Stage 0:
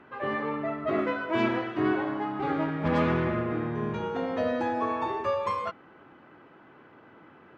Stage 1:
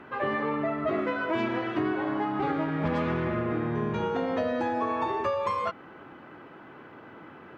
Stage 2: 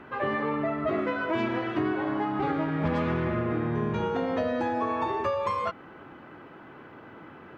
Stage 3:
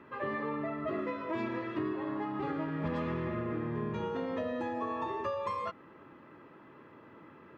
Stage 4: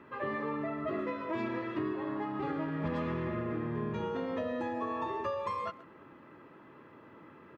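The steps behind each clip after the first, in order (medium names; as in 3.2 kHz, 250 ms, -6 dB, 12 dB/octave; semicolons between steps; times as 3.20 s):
compression, threshold -31 dBFS, peak gain reduction 10.5 dB; trim +6 dB
bass shelf 87 Hz +6.5 dB
comb of notches 750 Hz; trim -6.5 dB
speakerphone echo 130 ms, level -18 dB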